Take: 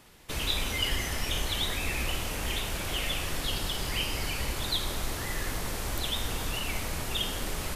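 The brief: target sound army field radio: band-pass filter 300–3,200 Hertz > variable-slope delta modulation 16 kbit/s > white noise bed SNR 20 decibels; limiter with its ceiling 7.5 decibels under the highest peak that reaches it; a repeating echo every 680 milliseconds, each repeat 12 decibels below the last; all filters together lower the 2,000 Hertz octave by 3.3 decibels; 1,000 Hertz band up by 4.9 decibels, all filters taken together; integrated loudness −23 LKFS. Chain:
parametric band 1,000 Hz +7.5 dB
parametric band 2,000 Hz −5 dB
brickwall limiter −22 dBFS
band-pass filter 300–3,200 Hz
repeating echo 680 ms, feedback 25%, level −12 dB
variable-slope delta modulation 16 kbit/s
white noise bed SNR 20 dB
level +14 dB

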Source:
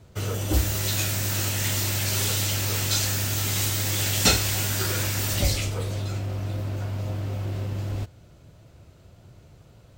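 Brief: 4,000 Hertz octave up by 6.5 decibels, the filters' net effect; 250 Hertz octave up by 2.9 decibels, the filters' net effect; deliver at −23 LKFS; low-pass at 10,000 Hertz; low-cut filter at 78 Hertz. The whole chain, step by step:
high-pass filter 78 Hz
low-pass filter 10,000 Hz
parametric band 250 Hz +4 dB
parametric band 4,000 Hz +8 dB
level −0.5 dB

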